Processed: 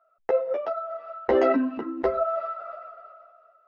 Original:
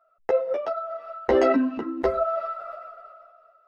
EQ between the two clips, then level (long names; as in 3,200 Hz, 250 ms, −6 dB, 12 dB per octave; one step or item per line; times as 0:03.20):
high-frequency loss of the air 74 metres
low-shelf EQ 160 Hz −7 dB
high-shelf EQ 5,100 Hz −8 dB
0.0 dB